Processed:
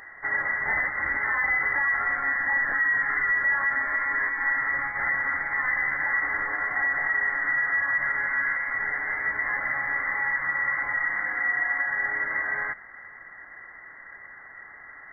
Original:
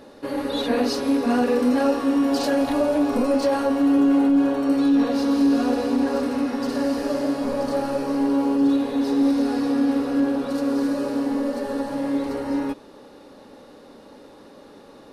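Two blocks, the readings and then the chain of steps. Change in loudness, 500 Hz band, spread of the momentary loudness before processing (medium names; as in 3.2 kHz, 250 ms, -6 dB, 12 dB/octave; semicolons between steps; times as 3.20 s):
-2.5 dB, -21.0 dB, 7 LU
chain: steep high-pass 490 Hz 48 dB/octave; peak limiter -22 dBFS, peak gain reduction 9 dB; frequency inversion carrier 2.5 kHz; trim +5 dB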